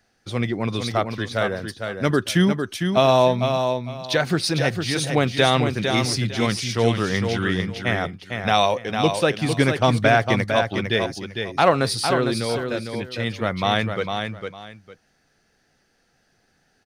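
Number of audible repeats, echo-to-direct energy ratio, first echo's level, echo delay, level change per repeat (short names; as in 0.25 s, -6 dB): 2, -6.0 dB, -6.0 dB, 0.454 s, -13.0 dB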